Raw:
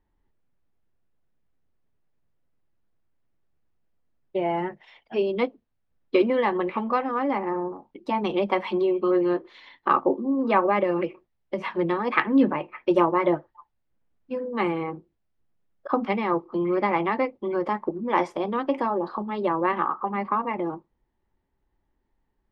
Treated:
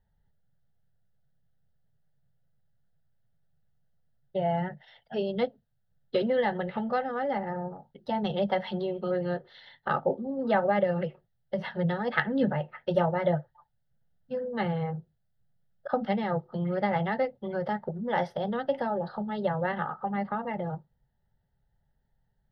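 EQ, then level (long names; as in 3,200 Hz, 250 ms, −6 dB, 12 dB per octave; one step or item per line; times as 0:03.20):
dynamic equaliser 1,100 Hz, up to −4 dB, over −36 dBFS, Q 2.4
parametric band 140 Hz +13 dB 0.92 octaves
phaser with its sweep stopped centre 1,600 Hz, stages 8
0.0 dB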